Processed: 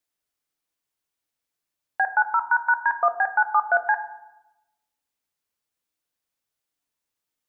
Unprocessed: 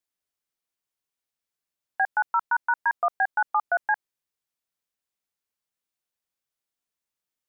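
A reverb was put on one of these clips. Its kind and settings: FDN reverb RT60 0.94 s, low-frequency decay 1.35×, high-frequency decay 0.25×, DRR 8.5 dB; trim +3 dB

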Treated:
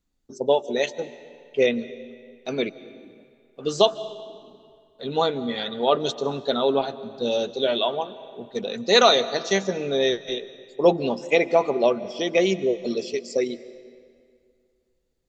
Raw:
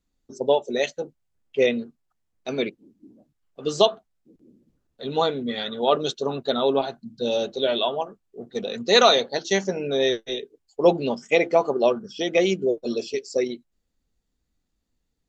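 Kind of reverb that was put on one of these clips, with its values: algorithmic reverb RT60 2.2 s, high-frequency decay 0.8×, pre-delay 110 ms, DRR 16 dB

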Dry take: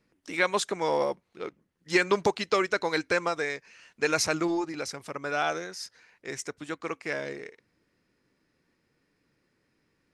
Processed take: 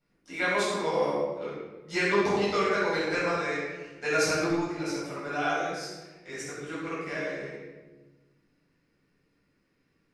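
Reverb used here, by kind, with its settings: simulated room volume 760 m³, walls mixed, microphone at 7.3 m; trim -13.5 dB

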